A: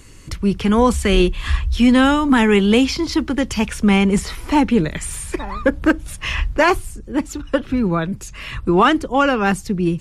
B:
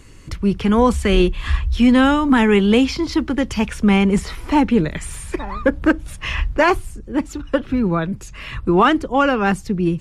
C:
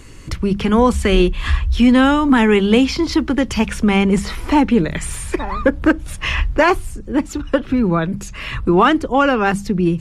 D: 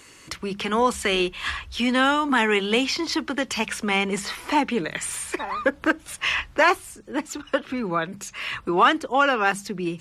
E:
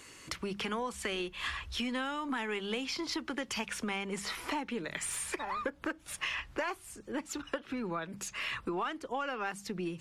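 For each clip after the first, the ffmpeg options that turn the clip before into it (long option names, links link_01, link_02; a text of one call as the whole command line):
ffmpeg -i in.wav -af "highshelf=frequency=4400:gain=-6.5" out.wav
ffmpeg -i in.wav -filter_complex "[0:a]asplit=2[link_01][link_02];[link_02]acompressor=threshold=-21dB:ratio=6,volume=0dB[link_03];[link_01][link_03]amix=inputs=2:normalize=0,bandreject=frequency=50:width_type=h:width=6,bandreject=frequency=100:width_type=h:width=6,bandreject=frequency=150:width_type=h:width=6,bandreject=frequency=200:width_type=h:width=6,volume=-1dB" out.wav
ffmpeg -i in.wav -af "highpass=frequency=870:poles=1,volume=-1dB" out.wav
ffmpeg -i in.wav -af "acompressor=threshold=-29dB:ratio=6,aeval=exprs='0.158*(cos(1*acos(clip(val(0)/0.158,-1,1)))-cos(1*PI/2))+0.00224*(cos(6*acos(clip(val(0)/0.158,-1,1)))-cos(6*PI/2))':channel_layout=same,volume=-4dB" out.wav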